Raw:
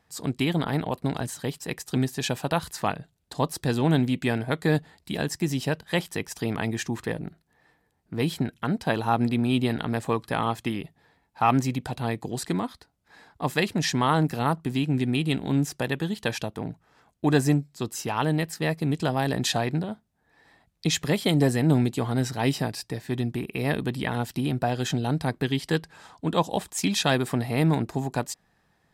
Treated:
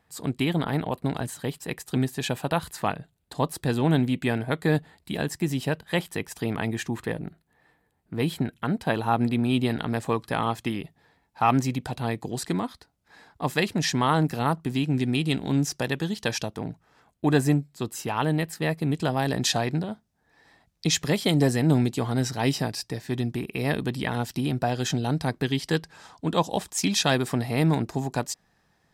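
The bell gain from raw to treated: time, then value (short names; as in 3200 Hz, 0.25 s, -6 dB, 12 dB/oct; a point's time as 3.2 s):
bell 5600 Hz 0.65 oct
9.13 s -5.5 dB
9.76 s +1 dB
14.7 s +1 dB
15.14 s +7.5 dB
16.41 s +7.5 dB
17.25 s -4 dB
18.88 s -4 dB
19.42 s +4.5 dB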